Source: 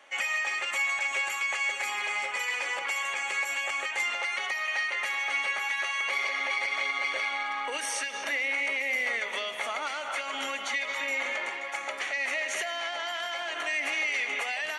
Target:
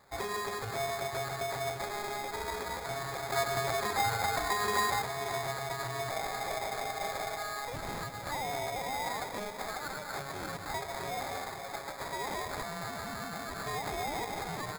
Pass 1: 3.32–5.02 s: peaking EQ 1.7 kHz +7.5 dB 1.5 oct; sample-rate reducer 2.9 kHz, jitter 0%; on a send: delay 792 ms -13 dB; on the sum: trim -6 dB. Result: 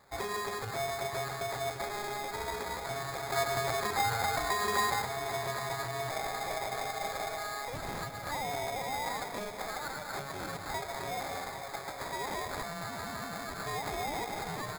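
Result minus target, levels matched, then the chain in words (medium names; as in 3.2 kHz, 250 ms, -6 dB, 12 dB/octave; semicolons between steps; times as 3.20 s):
echo 272 ms late
3.32–5.02 s: peaking EQ 1.7 kHz +7.5 dB 1.5 oct; sample-rate reducer 2.9 kHz, jitter 0%; on a send: delay 520 ms -13 dB; on the sum: trim -6 dB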